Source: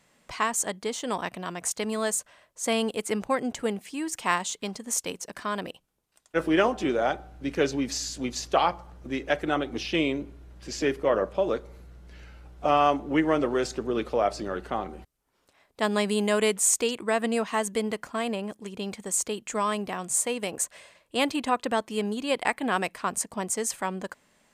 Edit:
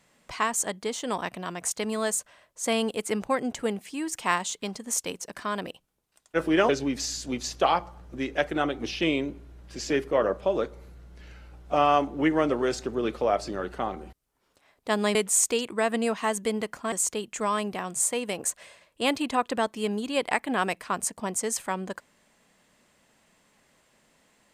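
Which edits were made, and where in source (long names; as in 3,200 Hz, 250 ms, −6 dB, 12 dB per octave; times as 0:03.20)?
0:06.69–0:07.61: remove
0:16.07–0:16.45: remove
0:18.22–0:19.06: remove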